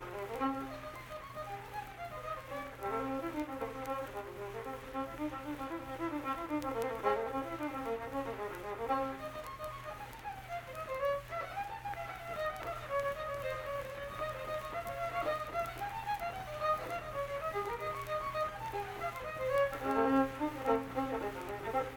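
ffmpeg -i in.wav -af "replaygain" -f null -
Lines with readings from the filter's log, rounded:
track_gain = +18.4 dB
track_peak = 0.103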